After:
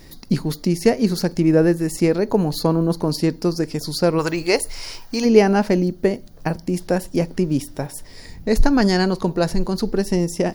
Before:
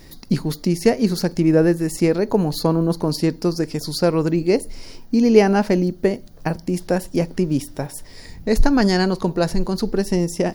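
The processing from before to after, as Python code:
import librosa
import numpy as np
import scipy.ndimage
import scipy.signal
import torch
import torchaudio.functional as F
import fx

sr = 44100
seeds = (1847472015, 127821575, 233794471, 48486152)

y = fx.curve_eq(x, sr, hz=(130.0, 190.0, 980.0), db=(0, -11, 9), at=(4.18, 5.24), fade=0.02)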